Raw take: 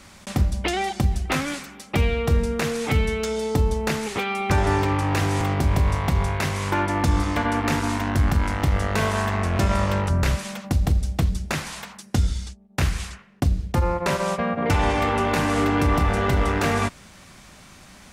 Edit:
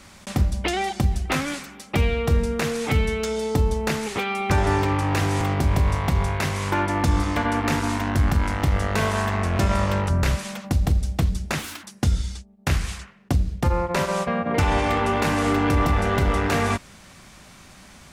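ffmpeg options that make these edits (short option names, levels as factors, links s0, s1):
-filter_complex "[0:a]asplit=3[s0][s1][s2];[s0]atrim=end=11.594[s3];[s1]atrim=start=11.59:end=11.95,asetpts=PTS-STARTPTS,asetrate=64827,aresample=44100[s4];[s2]atrim=start=11.946[s5];[s3][s4]acrossfade=d=0.004:c1=hsin:c2=hsin[s6];[s6][s5]acrossfade=d=0.004:c1=hsin:c2=hsin"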